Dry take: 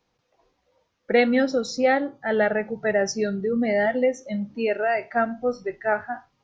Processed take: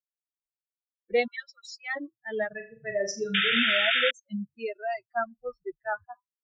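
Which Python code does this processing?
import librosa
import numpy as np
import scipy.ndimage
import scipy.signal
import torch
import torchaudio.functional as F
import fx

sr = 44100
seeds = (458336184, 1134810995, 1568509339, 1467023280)

y = fx.bin_expand(x, sr, power=3.0)
y = fx.steep_highpass(y, sr, hz=960.0, slope=48, at=(1.26, 1.95), fade=0.02)
y = fx.room_flutter(y, sr, wall_m=6.9, rt60_s=0.34, at=(2.49, 3.59))
y = fx.spec_paint(y, sr, seeds[0], shape='noise', start_s=3.34, length_s=0.77, low_hz=1300.0, high_hz=3700.0, level_db=-22.0)
y = F.gain(torch.from_numpy(y), -2.5).numpy()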